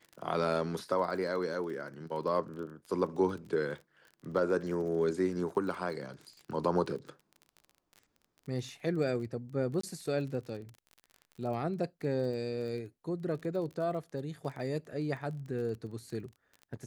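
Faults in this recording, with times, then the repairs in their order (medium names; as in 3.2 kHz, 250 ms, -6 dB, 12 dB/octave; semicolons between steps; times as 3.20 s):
crackle 28 per s -41 dBFS
9.81–9.83 s: dropout 24 ms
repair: de-click; interpolate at 9.81 s, 24 ms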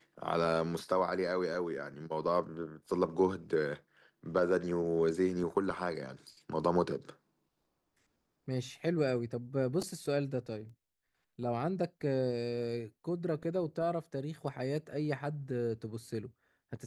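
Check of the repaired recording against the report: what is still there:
nothing left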